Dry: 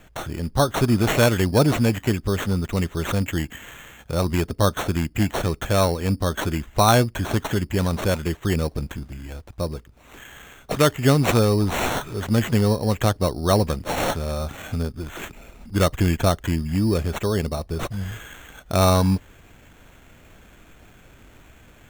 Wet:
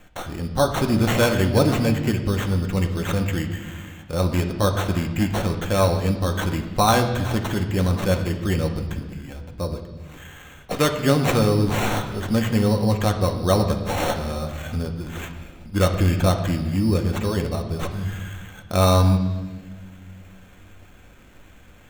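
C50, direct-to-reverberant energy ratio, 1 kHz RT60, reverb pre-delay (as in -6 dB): 8.5 dB, 3.5 dB, 1.2 s, 4 ms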